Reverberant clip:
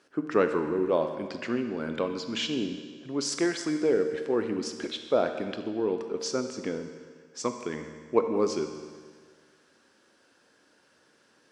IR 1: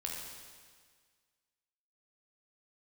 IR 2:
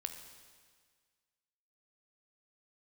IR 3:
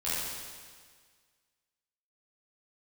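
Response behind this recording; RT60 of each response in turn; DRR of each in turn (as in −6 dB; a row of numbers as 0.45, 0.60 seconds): 2; 1.7, 1.7, 1.7 seconds; −1.5, 6.5, −11.5 decibels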